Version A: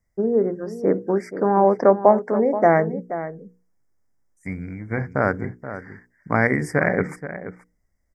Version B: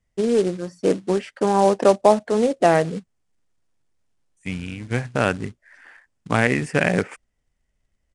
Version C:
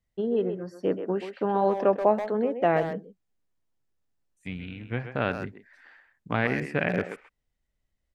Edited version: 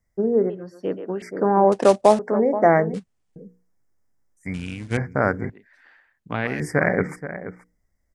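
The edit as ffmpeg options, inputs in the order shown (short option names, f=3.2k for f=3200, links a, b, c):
-filter_complex "[2:a]asplit=2[a][b];[1:a]asplit=3[c][d][e];[0:a]asplit=6[f][g][h][i][j][k];[f]atrim=end=0.502[l];[a]atrim=start=0.498:end=1.222[m];[g]atrim=start=1.218:end=1.722[n];[c]atrim=start=1.718:end=2.192[o];[h]atrim=start=2.188:end=2.942[p];[d]atrim=start=2.938:end=3.362[q];[i]atrim=start=3.358:end=4.542[r];[e]atrim=start=4.538:end=4.972[s];[j]atrim=start=4.968:end=5.502[t];[b]atrim=start=5.498:end=6.602[u];[k]atrim=start=6.598[v];[l][m]acrossfade=d=0.004:c1=hsin:c2=hsin[w];[w][n]acrossfade=d=0.004:c1=hsin:c2=hsin[x];[x][o]acrossfade=d=0.004:c1=hsin:c2=hsin[y];[y][p]acrossfade=d=0.004:c1=hsin:c2=hsin[z];[z][q]acrossfade=d=0.004:c1=hsin:c2=hsin[aa];[aa][r]acrossfade=d=0.004:c1=hsin:c2=hsin[ab];[ab][s]acrossfade=d=0.004:c1=hsin:c2=hsin[ac];[ac][t]acrossfade=d=0.004:c1=hsin:c2=hsin[ad];[ad][u]acrossfade=d=0.004:c1=hsin:c2=hsin[ae];[ae][v]acrossfade=d=0.004:c1=hsin:c2=hsin"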